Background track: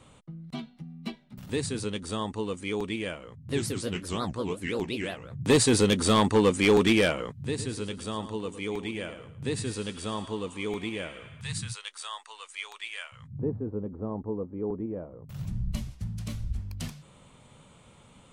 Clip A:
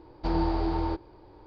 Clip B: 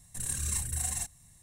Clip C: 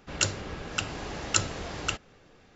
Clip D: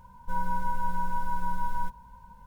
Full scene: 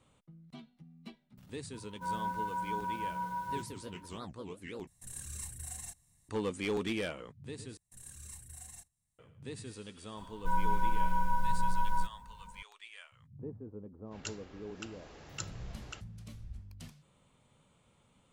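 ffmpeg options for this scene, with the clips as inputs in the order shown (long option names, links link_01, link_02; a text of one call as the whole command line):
ffmpeg -i bed.wav -i cue0.wav -i cue1.wav -i cue2.wav -i cue3.wav -filter_complex "[4:a]asplit=2[link_01][link_02];[2:a]asplit=2[link_03][link_04];[0:a]volume=-13dB[link_05];[link_01]highpass=frequency=73:width=0.5412,highpass=frequency=73:width=1.3066[link_06];[link_04]agate=range=-9dB:threshold=-52dB:ratio=16:release=100:detection=peak[link_07];[link_05]asplit=3[link_08][link_09][link_10];[link_08]atrim=end=4.874[link_11];[link_03]atrim=end=1.42,asetpts=PTS-STARTPTS,volume=-11dB[link_12];[link_09]atrim=start=6.286:end=7.774[link_13];[link_07]atrim=end=1.42,asetpts=PTS-STARTPTS,volume=-17dB[link_14];[link_10]atrim=start=9.186[link_15];[link_06]atrim=end=2.46,asetpts=PTS-STARTPTS,volume=-4dB,afade=type=in:duration=0.004:curve=hsin,afade=type=out:start_time=2.456:duration=0.004:curve=hsin,adelay=1730[link_16];[link_02]atrim=end=2.46,asetpts=PTS-STARTPTS,volume=-1dB,afade=type=in:duration=0.004:curve=hsin,afade=type=out:start_time=2.456:duration=0.004:curve=hsin,adelay=10170[link_17];[3:a]atrim=end=2.55,asetpts=PTS-STARTPTS,volume=-16.5dB,afade=type=in:duration=0.05,afade=type=out:start_time=2.5:duration=0.05,adelay=14040[link_18];[link_11][link_12]acrossfade=duration=0.004:curve1=hsin:curve2=hsin[link_19];[link_19][link_13]acrossfade=duration=0.004:curve1=hsin:curve2=hsin[link_20];[link_20][link_14]acrossfade=duration=0.004:curve1=hsin:curve2=hsin[link_21];[link_21][link_15]acrossfade=duration=0.004:curve1=hsin:curve2=hsin[link_22];[link_22][link_16][link_17][link_18]amix=inputs=4:normalize=0" out.wav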